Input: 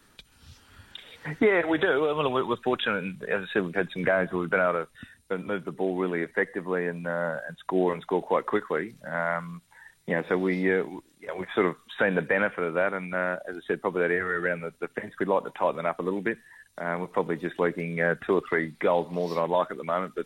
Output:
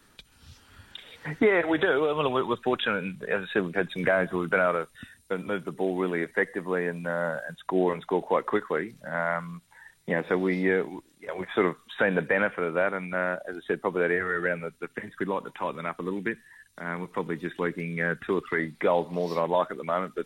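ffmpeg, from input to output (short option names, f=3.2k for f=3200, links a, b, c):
-filter_complex "[0:a]asettb=1/sr,asplit=3[a][b][c];[a]atrim=end=3.894[d];[b]atrim=start=3.89:end=7.6,asetpts=PTS-STARTPTS,afade=t=in:d=0.004:c=qsin,afade=t=out:st=3.706:d=0.004:c=qsin,highshelf=f=4.4k:g=5.5[e];[c]atrim=start=7.596[f];[d][e]acrossfade=d=0.004:c1=hsin:c2=qsin[g];[g][f]acrossfade=d=0.004:c1=qsin:c2=hsin,asettb=1/sr,asplit=3[h][i][j];[h]atrim=end=14.684[k];[i]atrim=start=14.68:end=18.59,asetpts=PTS-STARTPTS,afade=t=in:d=0.004:c=qsin,afade=t=out:st=3.906:d=0.004:c=qsin,equalizer=f=640:w=1.5:g=-9.5[l];[j]atrim=start=18.586[m];[k][l]acrossfade=d=0.004:c1=hsin:c2=qsin[n];[n][m]acrossfade=d=0.004:c1=qsin:c2=hsin"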